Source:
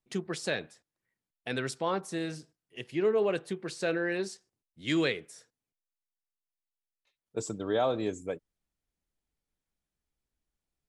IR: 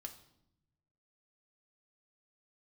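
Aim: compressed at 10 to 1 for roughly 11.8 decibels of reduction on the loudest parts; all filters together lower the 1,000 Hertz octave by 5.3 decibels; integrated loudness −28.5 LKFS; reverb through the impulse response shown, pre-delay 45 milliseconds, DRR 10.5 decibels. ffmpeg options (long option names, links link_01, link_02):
-filter_complex "[0:a]equalizer=frequency=1000:width_type=o:gain=-7.5,acompressor=threshold=-36dB:ratio=10,asplit=2[link_01][link_02];[1:a]atrim=start_sample=2205,adelay=45[link_03];[link_02][link_03]afir=irnorm=-1:irlink=0,volume=-6dB[link_04];[link_01][link_04]amix=inputs=2:normalize=0,volume=13dB"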